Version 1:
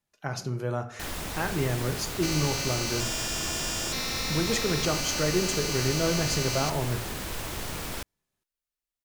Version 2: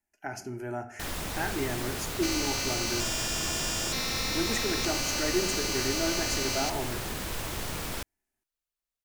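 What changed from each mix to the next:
speech: add phaser with its sweep stopped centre 760 Hz, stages 8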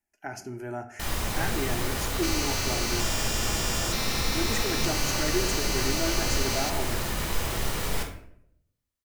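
first sound: send on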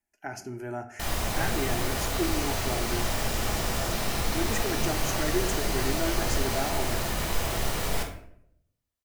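first sound: add parametric band 680 Hz +5.5 dB 0.38 octaves
second sound −10.0 dB

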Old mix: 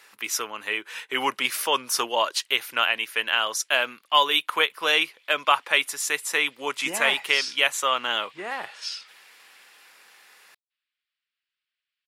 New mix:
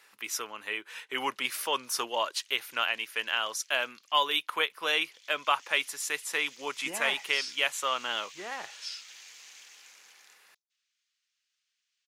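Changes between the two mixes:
speech −6.5 dB
background: remove moving average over 7 samples

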